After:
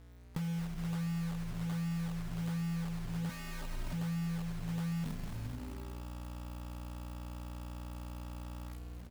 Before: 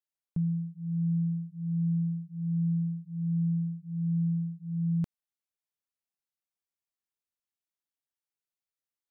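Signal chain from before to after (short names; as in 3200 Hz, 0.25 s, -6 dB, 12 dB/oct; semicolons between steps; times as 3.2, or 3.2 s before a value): spectral trails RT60 0.77 s; notches 60/120/180 Hz; hum 60 Hz, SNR 19 dB; AGC gain up to 12 dB; companded quantiser 4-bit; frequency-shifting echo 0.218 s, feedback 39%, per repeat -140 Hz, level -12 dB; compressor 6:1, threshold -31 dBFS, peak gain reduction 16 dB; 3.29–3.93 comb 3.2 ms, depth 98%; gain -4.5 dB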